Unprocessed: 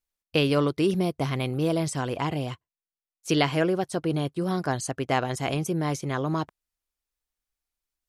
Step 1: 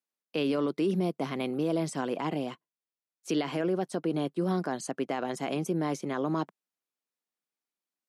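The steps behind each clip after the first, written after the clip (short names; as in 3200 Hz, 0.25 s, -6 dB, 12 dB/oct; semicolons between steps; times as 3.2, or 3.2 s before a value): steep high-pass 180 Hz 36 dB/oct; tilt -1.5 dB/oct; limiter -17.5 dBFS, peak gain reduction 10.5 dB; gain -2.5 dB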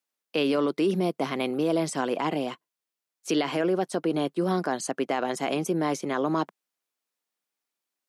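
low shelf 180 Hz -10.5 dB; gain +6 dB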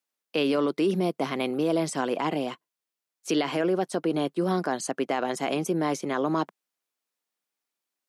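nothing audible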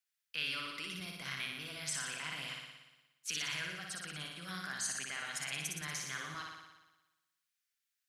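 limiter -19 dBFS, peak gain reduction 5.5 dB; EQ curve 100 Hz 0 dB, 330 Hz -30 dB, 890 Hz -19 dB, 1500 Hz +1 dB; flutter echo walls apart 10.1 m, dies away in 1.1 s; gain -4 dB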